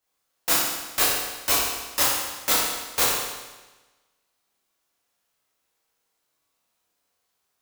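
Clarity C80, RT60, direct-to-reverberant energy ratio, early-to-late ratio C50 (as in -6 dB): 2.0 dB, 1.2 s, -7.5 dB, -0.5 dB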